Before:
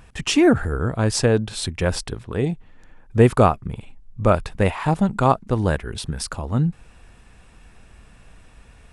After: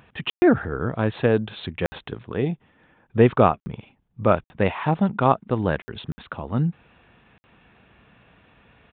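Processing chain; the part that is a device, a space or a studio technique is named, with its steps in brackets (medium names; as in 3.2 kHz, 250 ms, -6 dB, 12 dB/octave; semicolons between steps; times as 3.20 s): call with lost packets (high-pass 120 Hz 12 dB/octave; resampled via 8 kHz; lost packets of 60 ms random); trim -1 dB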